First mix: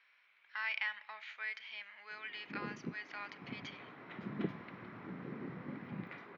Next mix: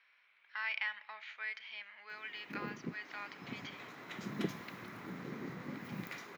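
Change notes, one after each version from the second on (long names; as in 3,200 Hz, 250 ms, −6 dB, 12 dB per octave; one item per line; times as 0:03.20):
background: remove high-frequency loss of the air 430 metres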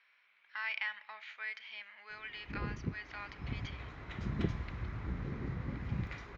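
background: add high-frequency loss of the air 130 metres
master: remove high-pass filter 180 Hz 24 dB per octave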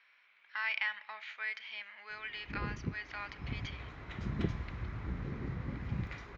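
speech +3.0 dB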